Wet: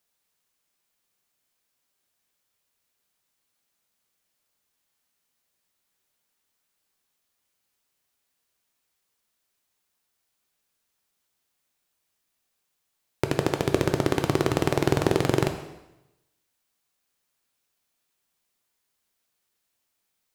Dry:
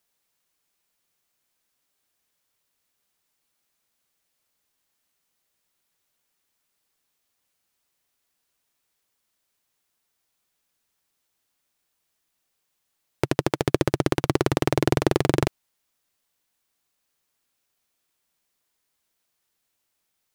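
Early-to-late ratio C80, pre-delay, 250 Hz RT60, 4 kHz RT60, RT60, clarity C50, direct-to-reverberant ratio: 10.5 dB, 5 ms, 0.90 s, 0.90 s, 0.90 s, 8.5 dB, 5.5 dB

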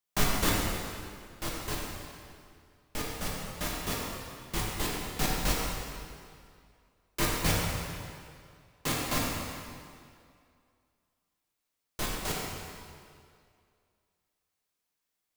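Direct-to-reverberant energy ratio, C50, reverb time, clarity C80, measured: -4.5 dB, -1.0 dB, 2.2 s, 0.5 dB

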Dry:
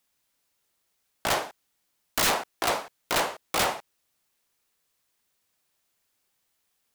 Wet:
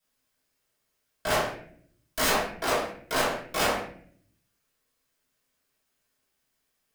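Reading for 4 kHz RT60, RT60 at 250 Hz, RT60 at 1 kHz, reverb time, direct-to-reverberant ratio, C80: 0.40 s, 0.95 s, 0.45 s, 0.55 s, -9.0 dB, 9.5 dB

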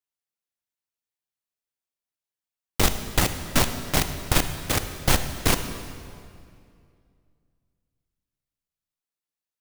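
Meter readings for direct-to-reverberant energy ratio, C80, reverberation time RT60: 8.5 dB, 10.0 dB, 2.3 s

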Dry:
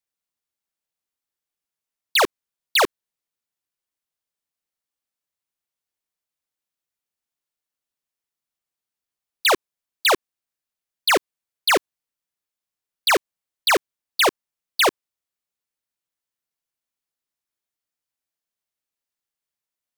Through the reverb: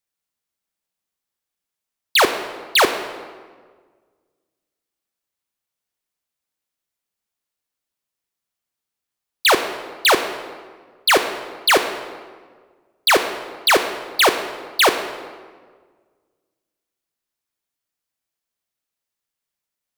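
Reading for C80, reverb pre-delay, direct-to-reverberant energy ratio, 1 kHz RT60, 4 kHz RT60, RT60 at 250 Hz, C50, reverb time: 10.5 dB, 17 ms, 7.5 dB, 1.5 s, 1.1 s, 1.8 s, 9.5 dB, 1.6 s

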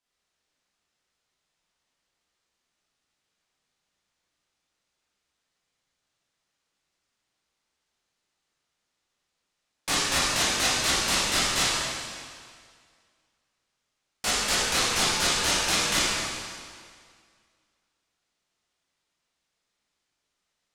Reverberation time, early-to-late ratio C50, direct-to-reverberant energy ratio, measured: 2.0 s, -3.0 dB, -9.0 dB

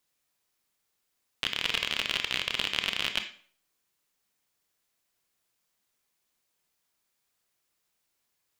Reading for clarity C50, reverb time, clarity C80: 10.0 dB, 0.50 s, 14.5 dB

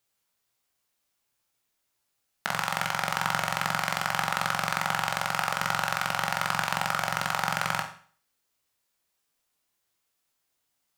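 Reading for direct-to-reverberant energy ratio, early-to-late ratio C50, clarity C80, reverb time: 2.5 dB, 9.0 dB, 13.5 dB, 0.45 s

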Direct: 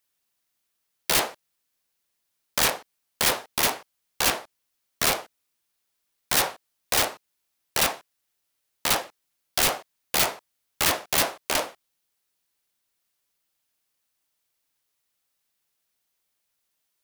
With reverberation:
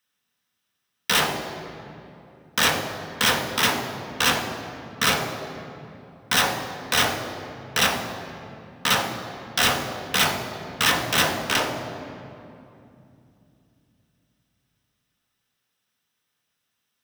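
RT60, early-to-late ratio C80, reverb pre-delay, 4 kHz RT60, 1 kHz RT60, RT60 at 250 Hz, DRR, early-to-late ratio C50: 2.8 s, 7.5 dB, 3 ms, 1.7 s, 2.6 s, 4.4 s, 2.5 dB, 6.5 dB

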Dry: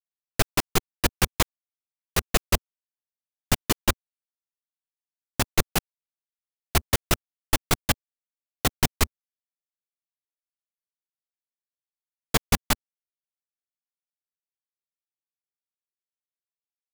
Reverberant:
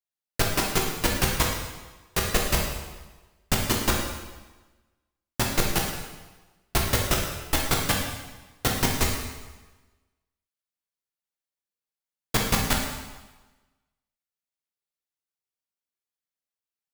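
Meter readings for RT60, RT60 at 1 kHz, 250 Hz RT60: 1.2 s, 1.3 s, 1.2 s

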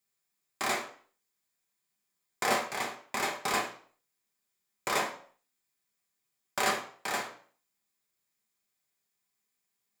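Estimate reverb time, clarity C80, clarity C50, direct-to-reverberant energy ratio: 0.50 s, 13.0 dB, 8.0 dB, -1.0 dB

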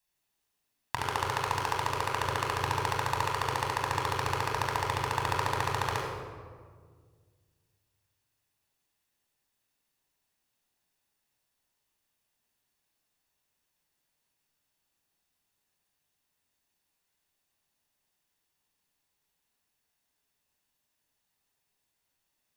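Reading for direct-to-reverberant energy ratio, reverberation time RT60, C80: -1.0 dB, 1.7 s, 2.5 dB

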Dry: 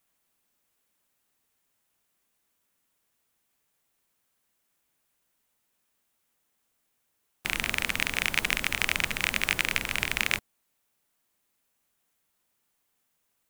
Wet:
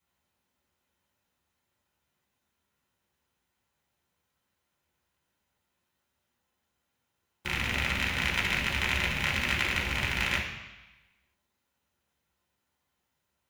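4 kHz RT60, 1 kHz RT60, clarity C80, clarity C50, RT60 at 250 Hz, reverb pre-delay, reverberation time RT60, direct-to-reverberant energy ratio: 1.1 s, 1.2 s, 7.0 dB, 4.5 dB, 1.0 s, 6 ms, 1.1 s, -5.0 dB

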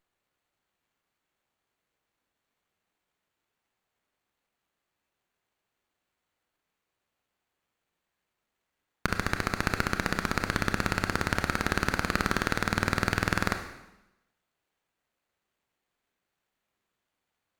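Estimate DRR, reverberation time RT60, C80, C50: 6.0 dB, 0.95 s, 11.0 dB, 8.0 dB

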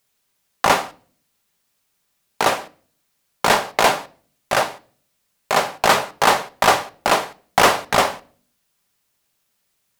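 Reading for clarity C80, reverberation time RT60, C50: 26.0 dB, 0.45 s, 22.0 dB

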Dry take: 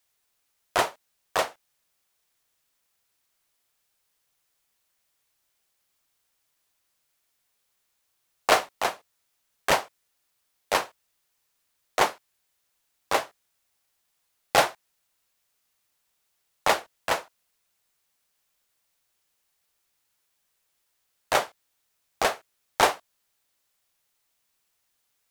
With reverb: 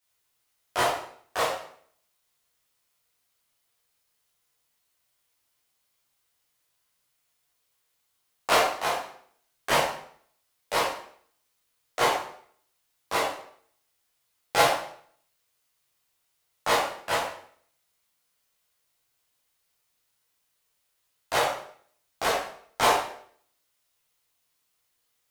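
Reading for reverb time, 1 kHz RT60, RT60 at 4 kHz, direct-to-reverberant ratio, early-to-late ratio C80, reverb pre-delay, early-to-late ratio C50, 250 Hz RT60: 0.60 s, 0.55 s, 0.55 s, -7.5 dB, 6.5 dB, 11 ms, 2.5 dB, 0.60 s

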